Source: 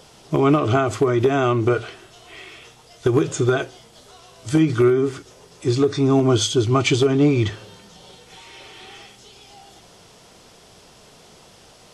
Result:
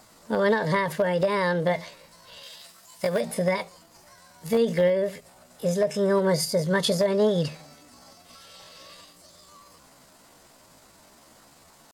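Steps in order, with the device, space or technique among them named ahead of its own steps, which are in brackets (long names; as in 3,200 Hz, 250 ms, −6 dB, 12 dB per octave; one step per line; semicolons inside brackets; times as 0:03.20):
chipmunk voice (pitch shifter +6.5 semitones)
0:02.43–0:03.21: spectral tilt +2 dB per octave
level −5.5 dB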